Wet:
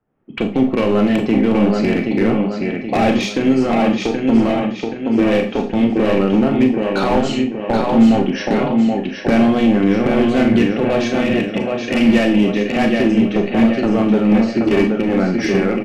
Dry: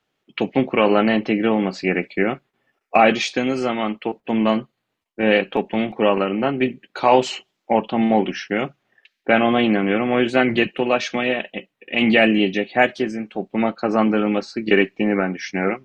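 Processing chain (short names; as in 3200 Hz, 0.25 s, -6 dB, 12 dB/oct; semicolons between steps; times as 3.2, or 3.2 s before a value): recorder AGC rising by 38 dB/s; on a send: feedback echo 0.776 s, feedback 47%, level -5 dB; on the sum: hard clip -12 dBFS, distortion -11 dB; low-pass opened by the level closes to 2200 Hz, open at -15.5 dBFS; low shelf 440 Hz +11.5 dB; Schroeder reverb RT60 0.32 s, combs from 27 ms, DRR 4.5 dB; low-pass opened by the level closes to 1600 Hz, open at -16.5 dBFS; gain -5 dB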